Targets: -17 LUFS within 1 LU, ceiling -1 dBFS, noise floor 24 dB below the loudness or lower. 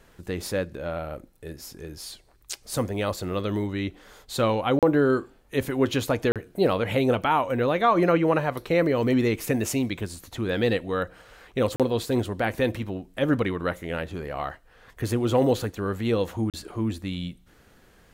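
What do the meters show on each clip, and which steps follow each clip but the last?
dropouts 4; longest dropout 37 ms; loudness -26.0 LUFS; peak level -8.5 dBFS; loudness target -17.0 LUFS
-> interpolate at 4.79/6.32/11.76/16.50 s, 37 ms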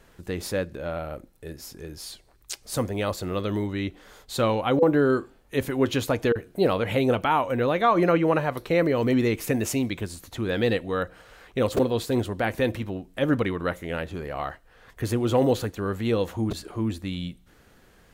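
dropouts 0; loudness -25.5 LUFS; peak level -8.5 dBFS; loudness target -17.0 LUFS
-> trim +8.5 dB; peak limiter -1 dBFS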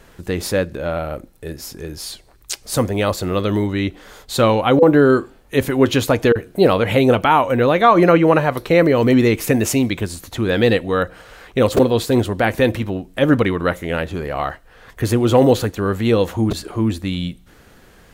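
loudness -17.0 LUFS; peak level -1.0 dBFS; noise floor -48 dBFS

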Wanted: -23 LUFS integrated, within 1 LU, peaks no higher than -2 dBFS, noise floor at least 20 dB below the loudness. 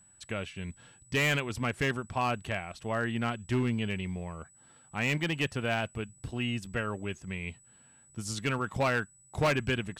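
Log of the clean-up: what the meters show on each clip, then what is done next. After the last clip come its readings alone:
clipped samples 1.2%; clipping level -22.0 dBFS; steady tone 7.9 kHz; tone level -58 dBFS; loudness -32.0 LUFS; peak level -22.0 dBFS; loudness target -23.0 LUFS
-> clip repair -22 dBFS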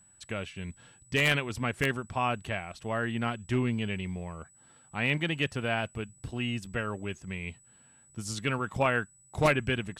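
clipped samples 0.0%; steady tone 7.9 kHz; tone level -58 dBFS
-> band-stop 7.9 kHz, Q 30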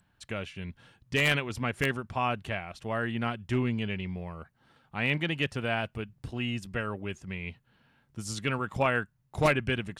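steady tone not found; loudness -31.0 LUFS; peak level -13.0 dBFS; loudness target -23.0 LUFS
-> trim +8 dB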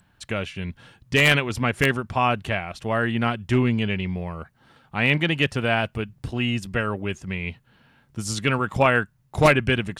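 loudness -23.0 LUFS; peak level -5.0 dBFS; noise floor -62 dBFS

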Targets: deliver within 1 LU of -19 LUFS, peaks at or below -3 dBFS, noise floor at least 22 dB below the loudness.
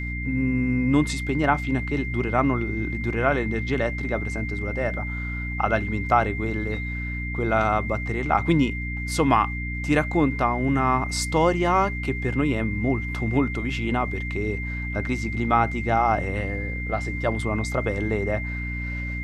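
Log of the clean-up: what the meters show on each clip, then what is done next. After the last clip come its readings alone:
hum 60 Hz; highest harmonic 300 Hz; hum level -28 dBFS; steady tone 2.1 kHz; tone level -32 dBFS; loudness -24.5 LUFS; peak level -5.0 dBFS; loudness target -19.0 LUFS
-> de-hum 60 Hz, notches 5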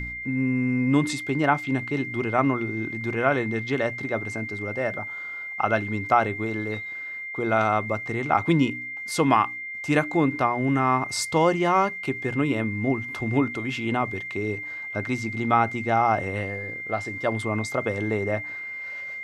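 hum not found; steady tone 2.1 kHz; tone level -32 dBFS
-> band-stop 2.1 kHz, Q 30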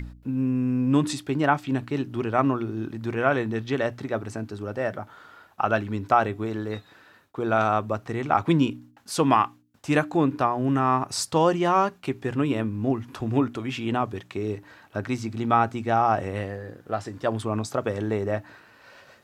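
steady tone not found; loudness -25.5 LUFS; peak level -5.5 dBFS; loudness target -19.0 LUFS
-> trim +6.5 dB; peak limiter -3 dBFS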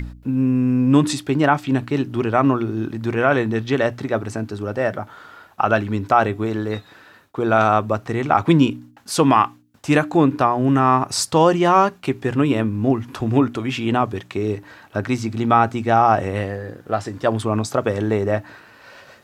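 loudness -19.5 LUFS; peak level -3.0 dBFS; noise floor -50 dBFS

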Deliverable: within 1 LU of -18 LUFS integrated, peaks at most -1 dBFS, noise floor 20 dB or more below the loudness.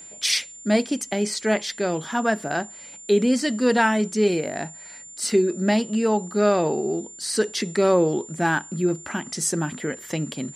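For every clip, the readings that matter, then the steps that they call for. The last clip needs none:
steady tone 7.2 kHz; tone level -40 dBFS; loudness -23.5 LUFS; peak level -7.5 dBFS; loudness target -18.0 LUFS
-> band-stop 7.2 kHz, Q 30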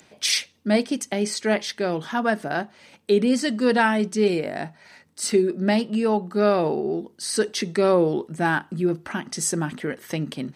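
steady tone not found; loudness -23.5 LUFS; peak level -7.5 dBFS; loudness target -18.0 LUFS
-> trim +5.5 dB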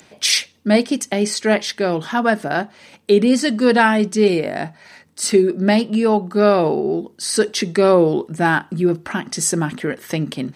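loudness -18.0 LUFS; peak level -2.0 dBFS; noise floor -51 dBFS

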